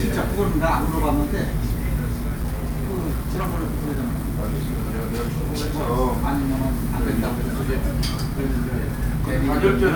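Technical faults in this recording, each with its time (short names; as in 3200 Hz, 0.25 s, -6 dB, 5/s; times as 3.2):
2.12–5.91 clipped -20 dBFS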